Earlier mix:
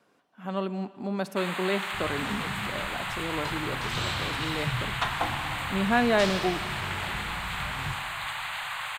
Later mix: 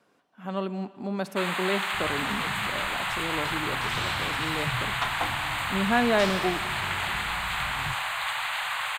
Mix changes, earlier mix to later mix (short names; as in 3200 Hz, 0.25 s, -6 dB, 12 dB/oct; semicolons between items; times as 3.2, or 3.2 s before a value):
first sound +4.0 dB; second sound: send -9.0 dB